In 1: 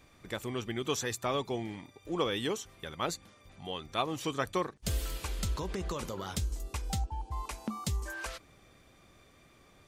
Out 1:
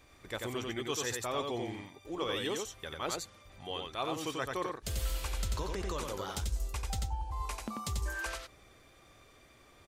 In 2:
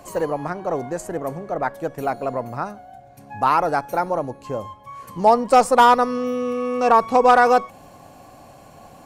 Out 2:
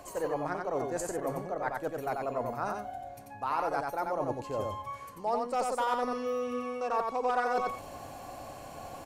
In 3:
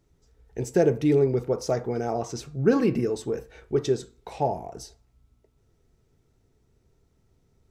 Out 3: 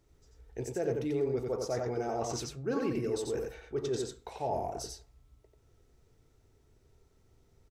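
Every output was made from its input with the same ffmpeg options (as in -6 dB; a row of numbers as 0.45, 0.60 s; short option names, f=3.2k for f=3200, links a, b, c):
-af "equalizer=f=180:t=o:w=0.97:g=-7,areverse,acompressor=threshold=-32dB:ratio=4,areverse,aecho=1:1:90:0.668"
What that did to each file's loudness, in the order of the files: -1.5, -13.5, -9.0 LU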